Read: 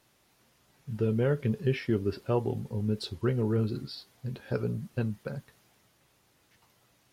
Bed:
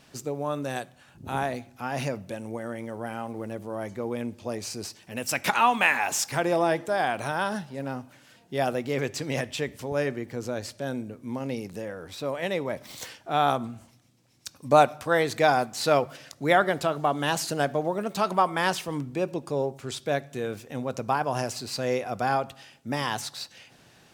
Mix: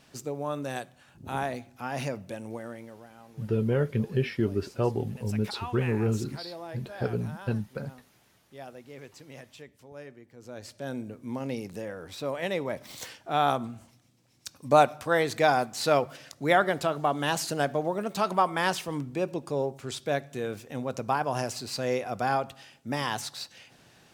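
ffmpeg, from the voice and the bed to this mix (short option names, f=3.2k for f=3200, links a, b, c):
-filter_complex "[0:a]adelay=2500,volume=1dB[a];[1:a]volume=13.5dB,afade=t=out:st=2.48:d=0.59:silence=0.177828,afade=t=in:st=10.37:d=0.71:silence=0.158489[b];[a][b]amix=inputs=2:normalize=0"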